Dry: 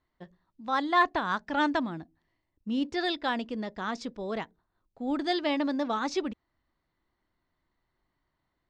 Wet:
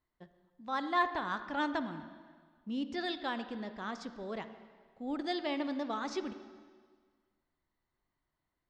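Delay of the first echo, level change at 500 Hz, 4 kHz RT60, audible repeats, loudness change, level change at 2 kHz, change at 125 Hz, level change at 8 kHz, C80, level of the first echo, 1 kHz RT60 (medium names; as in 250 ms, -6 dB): no echo, -6.5 dB, 1.6 s, no echo, -6.5 dB, -6.5 dB, -6.5 dB, no reading, 12.0 dB, no echo, 1.7 s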